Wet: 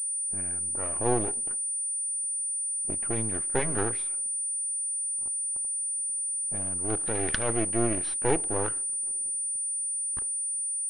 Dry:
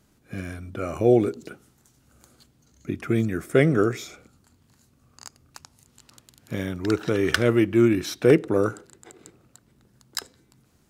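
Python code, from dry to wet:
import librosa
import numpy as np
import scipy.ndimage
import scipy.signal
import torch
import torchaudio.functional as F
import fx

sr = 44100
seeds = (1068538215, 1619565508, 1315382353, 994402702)

y = fx.median_filter(x, sr, points=25, at=(6.57, 7.05), fade=0.02)
y = np.maximum(y, 0.0)
y = fx.env_lowpass(y, sr, base_hz=670.0, full_db=-21.0)
y = fx.low_shelf(y, sr, hz=330.0, db=-3.5)
y = fx.pwm(y, sr, carrier_hz=9300.0)
y = F.gain(torch.from_numpy(y), -3.5).numpy()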